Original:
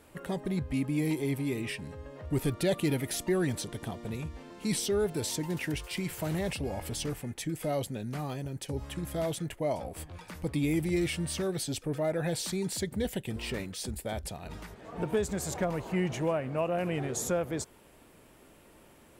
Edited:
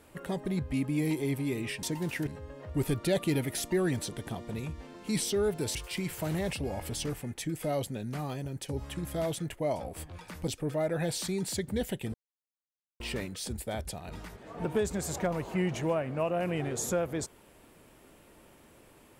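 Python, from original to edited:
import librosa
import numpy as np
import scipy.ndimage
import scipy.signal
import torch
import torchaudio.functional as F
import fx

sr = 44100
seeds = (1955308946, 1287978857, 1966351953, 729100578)

y = fx.edit(x, sr, fx.move(start_s=5.31, length_s=0.44, to_s=1.83),
    fx.cut(start_s=10.48, length_s=1.24),
    fx.insert_silence(at_s=13.38, length_s=0.86), tone=tone)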